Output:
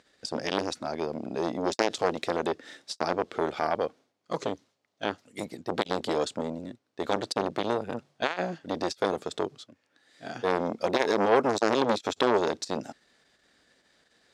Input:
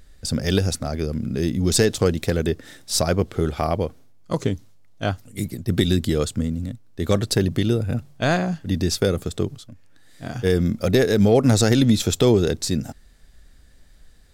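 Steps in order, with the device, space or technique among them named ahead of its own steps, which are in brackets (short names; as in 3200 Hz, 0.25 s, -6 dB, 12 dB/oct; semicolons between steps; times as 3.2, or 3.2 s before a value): public-address speaker with an overloaded transformer (core saturation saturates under 950 Hz; BPF 330–5700 Hz)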